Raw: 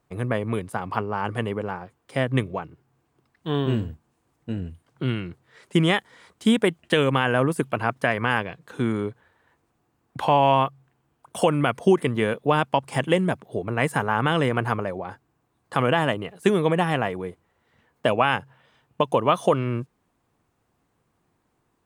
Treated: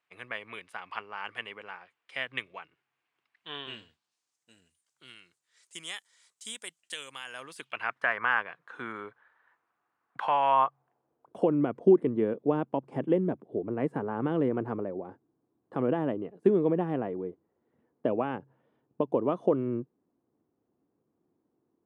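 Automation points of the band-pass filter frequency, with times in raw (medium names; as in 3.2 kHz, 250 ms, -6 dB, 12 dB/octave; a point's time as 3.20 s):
band-pass filter, Q 1.7
3.57 s 2.5 kHz
4.51 s 7.4 kHz
7.25 s 7.4 kHz
8.06 s 1.4 kHz
10.43 s 1.4 kHz
11.46 s 320 Hz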